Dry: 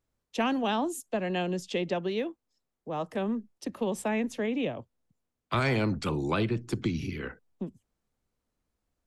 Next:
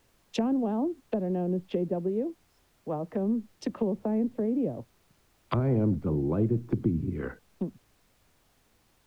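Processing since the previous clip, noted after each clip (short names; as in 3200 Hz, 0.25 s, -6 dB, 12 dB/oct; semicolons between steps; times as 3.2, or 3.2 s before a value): treble ducked by the level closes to 460 Hz, closed at -29 dBFS; added noise pink -70 dBFS; gain +3.5 dB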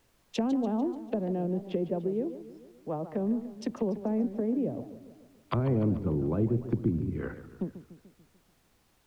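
warbling echo 0.146 s, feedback 55%, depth 217 cents, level -13 dB; gain -1.5 dB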